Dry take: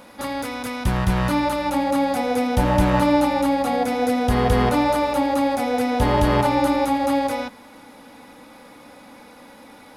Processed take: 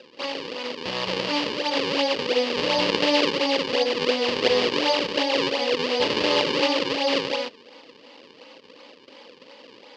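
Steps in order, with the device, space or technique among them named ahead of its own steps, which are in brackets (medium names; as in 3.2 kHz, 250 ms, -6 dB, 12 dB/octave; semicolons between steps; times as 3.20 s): circuit-bent sampling toy (decimation with a swept rate 38×, swing 160% 2.8 Hz; cabinet simulation 420–5000 Hz, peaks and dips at 500 Hz +6 dB, 720 Hz -9 dB, 1.4 kHz -9 dB, 2.9 kHz +9 dB, 4.7 kHz +10 dB)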